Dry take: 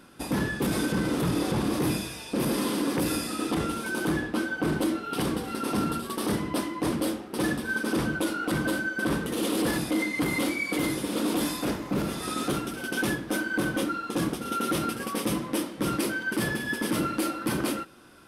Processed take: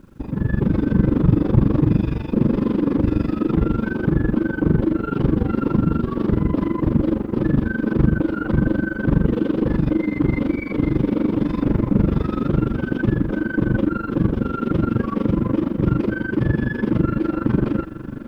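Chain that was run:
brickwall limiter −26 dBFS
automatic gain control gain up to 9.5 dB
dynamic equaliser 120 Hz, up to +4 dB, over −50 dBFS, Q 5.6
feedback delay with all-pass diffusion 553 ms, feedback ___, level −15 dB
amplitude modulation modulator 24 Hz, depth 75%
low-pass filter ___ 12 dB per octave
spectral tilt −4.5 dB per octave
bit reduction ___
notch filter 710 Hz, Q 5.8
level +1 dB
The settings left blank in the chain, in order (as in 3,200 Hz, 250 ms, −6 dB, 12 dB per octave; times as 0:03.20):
51%, 3,100 Hz, 11 bits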